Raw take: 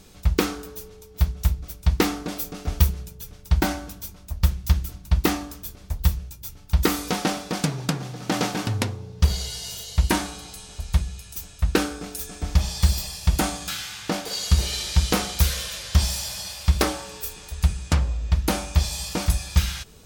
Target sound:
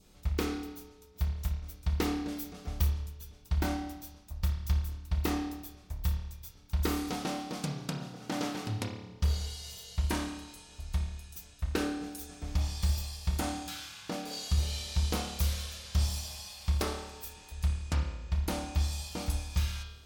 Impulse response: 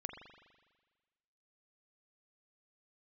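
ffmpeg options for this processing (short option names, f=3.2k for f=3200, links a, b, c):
-filter_complex "[0:a]adynamicequalizer=threshold=0.00447:dfrequency=1700:dqfactor=1.9:tfrequency=1700:tqfactor=1.9:attack=5:release=100:ratio=0.375:range=2:mode=cutabove:tftype=bell[a];[1:a]atrim=start_sample=2205,asetrate=66150,aresample=44100[b];[a][b]afir=irnorm=-1:irlink=0,volume=-4.5dB"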